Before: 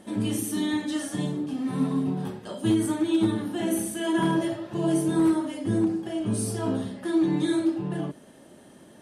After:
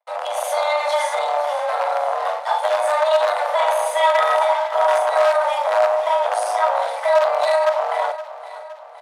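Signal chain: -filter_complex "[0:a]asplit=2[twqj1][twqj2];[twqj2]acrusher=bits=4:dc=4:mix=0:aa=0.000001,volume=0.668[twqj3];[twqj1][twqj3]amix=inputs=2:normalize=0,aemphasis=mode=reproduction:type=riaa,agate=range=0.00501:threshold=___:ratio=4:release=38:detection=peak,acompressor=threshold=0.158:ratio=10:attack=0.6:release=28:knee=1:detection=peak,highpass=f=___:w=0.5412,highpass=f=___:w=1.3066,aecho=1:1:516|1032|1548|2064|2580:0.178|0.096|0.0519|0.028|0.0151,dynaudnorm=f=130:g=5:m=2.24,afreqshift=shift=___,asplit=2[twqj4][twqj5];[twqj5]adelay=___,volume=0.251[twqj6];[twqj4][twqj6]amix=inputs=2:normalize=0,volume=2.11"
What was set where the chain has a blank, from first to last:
0.0224, 410, 410, 290, 40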